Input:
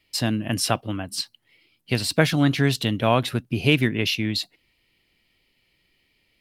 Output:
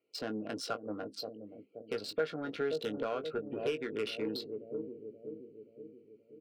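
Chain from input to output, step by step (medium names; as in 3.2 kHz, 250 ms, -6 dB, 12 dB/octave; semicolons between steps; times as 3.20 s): local Wiener filter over 25 samples; high-pass 290 Hz 12 dB/octave; spectral gate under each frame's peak -30 dB strong; low-pass 5.5 kHz 12 dB/octave; band-stop 910 Hz, Q 5.4; on a send: bucket-brigade echo 527 ms, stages 2048, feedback 54%, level -11.5 dB; on the sum: compression 20:1, threshold -27 dBFS, peak gain reduction 14.5 dB; saturation -26 dBFS, distortion -13 dB; doubling 19 ms -8.5 dB; small resonant body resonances 460/1400 Hz, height 15 dB, ringing for 40 ms; dynamic bell 1.2 kHz, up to +4 dB, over -42 dBFS, Q 1.2; trim -7.5 dB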